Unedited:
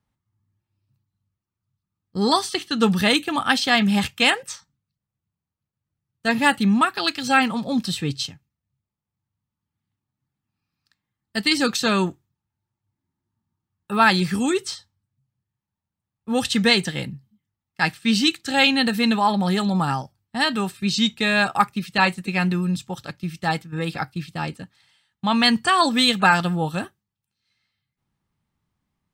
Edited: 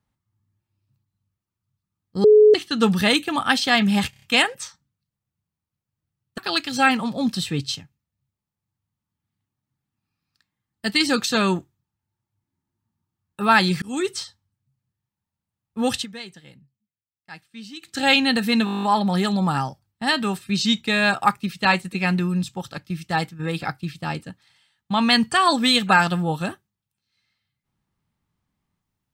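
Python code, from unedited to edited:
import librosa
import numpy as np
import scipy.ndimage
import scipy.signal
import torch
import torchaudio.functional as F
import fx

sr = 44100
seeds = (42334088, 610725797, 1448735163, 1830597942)

y = fx.edit(x, sr, fx.bleep(start_s=2.24, length_s=0.3, hz=425.0, db=-8.0),
    fx.stutter(start_s=4.1, slice_s=0.03, count=5),
    fx.cut(start_s=6.26, length_s=0.63),
    fx.fade_in_span(start_s=14.33, length_s=0.36, curve='qsin'),
    fx.fade_down_up(start_s=16.45, length_s=1.99, db=-19.5, fade_s=0.12, curve='qsin'),
    fx.stutter(start_s=19.16, slice_s=0.02, count=10), tone=tone)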